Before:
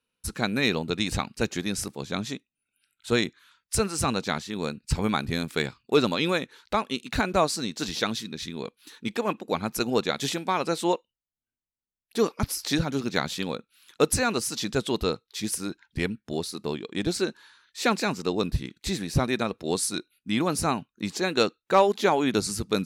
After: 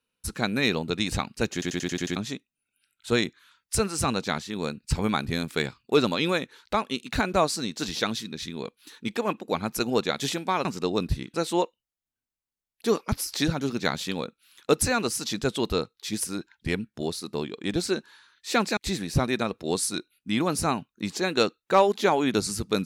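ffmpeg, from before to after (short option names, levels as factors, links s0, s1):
-filter_complex "[0:a]asplit=11[s0][s1][s2][s3][s4][s5][s6][s7][s8][s9][s10];[s0]atrim=end=1.622[s11];[s1]atrim=start=1.528:end=1.622[s12];[s2]atrim=start=1.528:end=1.622[s13];[s3]atrim=start=1.528:end=1.622[s14];[s4]atrim=start=1.528:end=1.622[s15];[s5]atrim=start=1.528:end=1.622[s16];[s6]atrim=start=1.528:end=1.622[s17];[s7]atrim=start=2.158:end=10.652[s18];[s8]atrim=start=18.078:end=18.772[s19];[s9]atrim=start=10.648:end=18.082[s20];[s10]atrim=start=18.768[s21];[s11][s12]acrossfade=d=0.004:c1=hsin:c2=hsin[s22];[s22][s13]acrossfade=d=0.004:c1=hsin:c2=hsin[s23];[s23][s14]acrossfade=d=0.004:c1=hsin:c2=hsin[s24];[s24][s15]acrossfade=d=0.004:c1=hsin:c2=hsin[s25];[s25][s16]acrossfade=d=0.004:c1=hsin:c2=hsin[s26];[s26][s17]acrossfade=d=0.004:c1=hsin:c2=hsin[s27];[s27][s18]acrossfade=d=0.004:c1=hsin:c2=hsin[s28];[s28][s19]acrossfade=d=0.004:c1=hsin:c2=hsin[s29];[s29][s20]acrossfade=d=0.004:c1=hsin:c2=hsin[s30];[s30][s21]acrossfade=d=0.004:c1=hsin:c2=hsin"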